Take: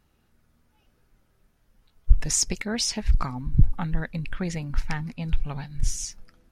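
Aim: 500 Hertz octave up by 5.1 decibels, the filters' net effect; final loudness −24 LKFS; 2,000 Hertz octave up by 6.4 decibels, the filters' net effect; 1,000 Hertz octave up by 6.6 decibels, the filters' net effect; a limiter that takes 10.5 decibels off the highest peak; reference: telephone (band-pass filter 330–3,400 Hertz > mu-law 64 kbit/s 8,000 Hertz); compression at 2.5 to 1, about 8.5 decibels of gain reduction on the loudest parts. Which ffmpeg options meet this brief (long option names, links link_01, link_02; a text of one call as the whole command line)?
ffmpeg -i in.wav -af "equalizer=frequency=500:width_type=o:gain=6,equalizer=frequency=1000:width_type=o:gain=5,equalizer=frequency=2000:width_type=o:gain=6.5,acompressor=threshold=-21dB:ratio=2.5,alimiter=limit=-20.5dB:level=0:latency=1,highpass=330,lowpass=3400,volume=13.5dB" -ar 8000 -c:a pcm_mulaw out.wav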